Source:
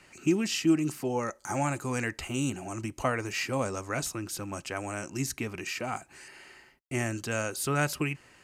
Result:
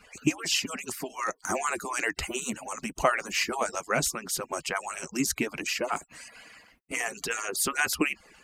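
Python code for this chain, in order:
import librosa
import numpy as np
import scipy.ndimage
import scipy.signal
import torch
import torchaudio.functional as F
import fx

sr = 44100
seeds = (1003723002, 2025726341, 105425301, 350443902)

y = fx.hpss_only(x, sr, part='percussive')
y = F.gain(torch.from_numpy(y), 6.5).numpy()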